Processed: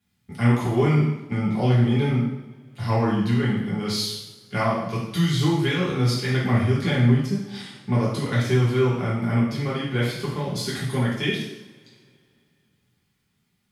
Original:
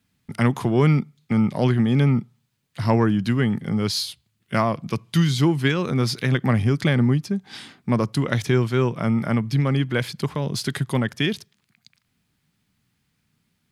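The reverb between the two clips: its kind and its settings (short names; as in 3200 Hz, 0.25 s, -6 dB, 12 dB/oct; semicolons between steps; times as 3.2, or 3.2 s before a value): two-slope reverb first 0.78 s, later 2.9 s, from -24 dB, DRR -8 dB; gain -9.5 dB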